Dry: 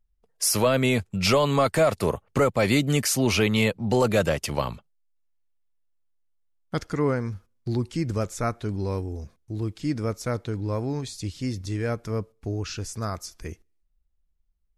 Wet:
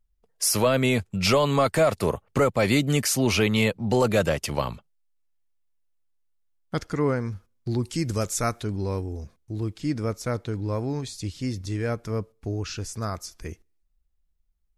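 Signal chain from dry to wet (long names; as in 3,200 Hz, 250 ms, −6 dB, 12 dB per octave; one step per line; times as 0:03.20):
0:07.82–0:08.62: high-shelf EQ 4,900 Hz → 2,900 Hz +11.5 dB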